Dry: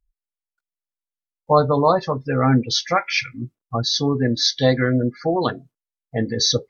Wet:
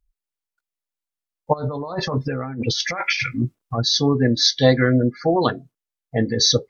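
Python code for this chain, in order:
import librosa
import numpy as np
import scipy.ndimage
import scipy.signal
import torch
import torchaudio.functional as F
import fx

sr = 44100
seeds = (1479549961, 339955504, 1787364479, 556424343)

y = fx.over_compress(x, sr, threshold_db=-27.0, ratio=-1.0, at=(1.52, 3.77), fade=0.02)
y = F.gain(torch.from_numpy(y), 2.0).numpy()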